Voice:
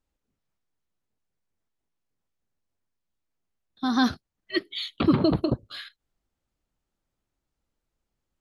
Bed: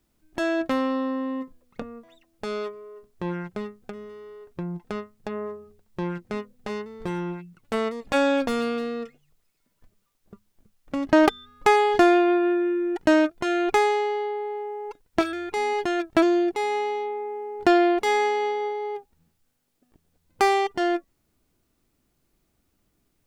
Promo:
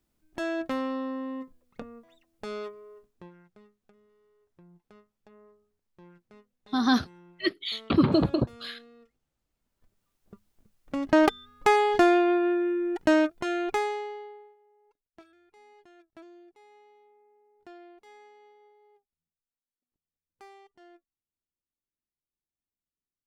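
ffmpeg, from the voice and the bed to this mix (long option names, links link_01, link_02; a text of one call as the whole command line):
ffmpeg -i stem1.wav -i stem2.wav -filter_complex "[0:a]adelay=2900,volume=-0.5dB[link_01];[1:a]volume=15dB,afade=type=out:start_time=2.92:duration=0.39:silence=0.125893,afade=type=in:start_time=9.47:duration=0.85:silence=0.0891251,afade=type=out:start_time=13.22:duration=1.34:silence=0.0398107[link_02];[link_01][link_02]amix=inputs=2:normalize=0" out.wav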